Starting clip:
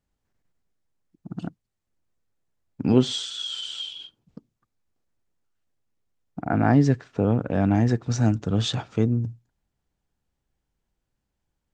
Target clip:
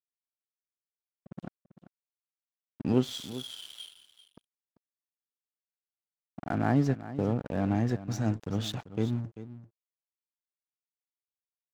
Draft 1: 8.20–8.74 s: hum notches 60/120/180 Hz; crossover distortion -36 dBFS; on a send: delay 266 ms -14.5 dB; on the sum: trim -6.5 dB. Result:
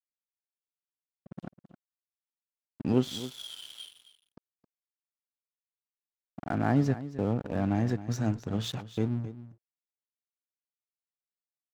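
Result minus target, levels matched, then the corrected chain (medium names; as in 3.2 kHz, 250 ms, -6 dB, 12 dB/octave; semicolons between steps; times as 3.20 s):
echo 125 ms early
8.20–8.74 s: hum notches 60/120/180 Hz; crossover distortion -36 dBFS; on a send: delay 391 ms -14.5 dB; on the sum: trim -6.5 dB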